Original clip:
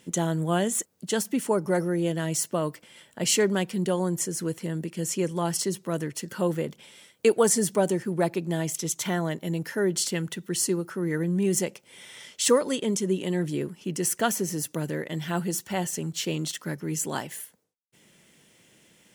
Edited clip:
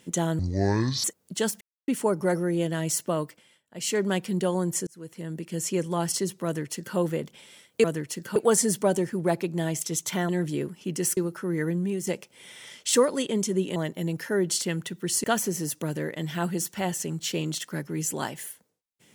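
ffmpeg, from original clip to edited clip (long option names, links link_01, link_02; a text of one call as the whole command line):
ffmpeg -i in.wav -filter_complex "[0:a]asplit=14[link_01][link_02][link_03][link_04][link_05][link_06][link_07][link_08][link_09][link_10][link_11][link_12][link_13][link_14];[link_01]atrim=end=0.394[link_15];[link_02]atrim=start=0.39:end=0.76,asetpts=PTS-STARTPTS,asetrate=25137,aresample=44100,atrim=end_sample=28626,asetpts=PTS-STARTPTS[link_16];[link_03]atrim=start=0.756:end=1.33,asetpts=PTS-STARTPTS,afade=type=out:start_time=0.57:duration=0.004:curve=hsin,apad=pad_dur=0.27[link_17];[link_04]atrim=start=1.33:end=3.08,asetpts=PTS-STARTPTS,afade=type=in:duration=0.004:curve=hsin,afade=type=out:start_time=1.29:duration=0.46:silence=0.0841395[link_18];[link_05]atrim=start=3.08:end=3.12,asetpts=PTS-STARTPTS,volume=-21.5dB[link_19];[link_06]atrim=start=3.12:end=4.32,asetpts=PTS-STARTPTS,afade=type=in:duration=0.46:silence=0.0841395,afade=type=out:start_time=1.196:duration=0.004:curve=hsin[link_20];[link_07]atrim=start=4.32:end=7.292,asetpts=PTS-STARTPTS,afade=type=in:duration=0.97:curve=qsin[link_21];[link_08]atrim=start=5.898:end=6.422[link_22];[link_09]atrim=start=7.288:end=9.222[link_23];[link_10]atrim=start=13.288:end=14.172[link_24];[link_11]atrim=start=10.698:end=11.6,asetpts=PTS-STARTPTS,afade=type=out:start_time=0.542:duration=0.36:silence=0.298538[link_25];[link_12]atrim=start=11.6:end=13.292,asetpts=PTS-STARTPTS,afade=type=in:duration=0.004:curve=hsin:silence=0.298538[link_26];[link_13]atrim=start=9.218:end=10.702[link_27];[link_14]atrim=start=14.168[link_28];[link_15][link_16]acrossfade=duration=0.004:curve1=hsin:curve2=hsin[link_29];[link_17][link_18][link_19][link_20][link_21]concat=n=5:v=0:a=1[link_30];[link_29][link_30]acrossfade=duration=0.004:curve1=hsin:curve2=hsin[link_31];[link_31][link_22]acrossfade=duration=0.004:curve1=hsin:curve2=hsin[link_32];[link_32][link_23]acrossfade=duration=0.004:curve1=hsin:curve2=hsin[link_33];[link_33][link_24]acrossfade=duration=0.004:curve1=hsin:curve2=hsin[link_34];[link_25][link_26]concat=n=2:v=0:a=1[link_35];[link_34][link_35]acrossfade=duration=0.004:curve1=hsin:curve2=hsin[link_36];[link_36][link_27]acrossfade=duration=0.004:curve1=hsin:curve2=hsin[link_37];[link_37][link_28]acrossfade=duration=0.004:curve1=hsin:curve2=hsin" out.wav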